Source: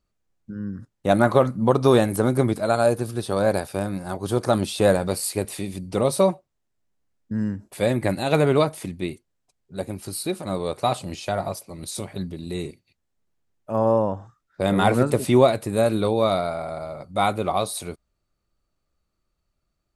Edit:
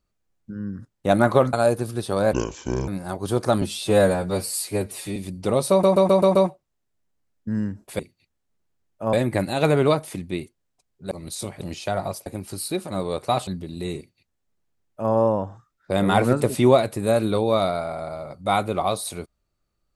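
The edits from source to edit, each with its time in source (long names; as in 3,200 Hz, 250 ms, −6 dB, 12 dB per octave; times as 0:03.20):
0:01.53–0:02.73: remove
0:03.53–0:03.88: play speed 64%
0:04.62–0:05.65: time-stretch 1.5×
0:06.19: stutter 0.13 s, 6 plays
0:09.81–0:11.02: swap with 0:11.67–0:12.17
0:12.67–0:13.81: duplicate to 0:07.83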